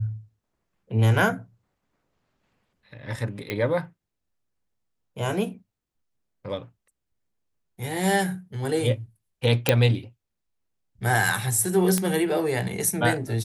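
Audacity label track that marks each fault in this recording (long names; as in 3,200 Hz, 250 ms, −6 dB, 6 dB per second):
3.500000	3.500000	click −15 dBFS
9.690000	9.690000	click −3 dBFS
11.980000	11.980000	click −9 dBFS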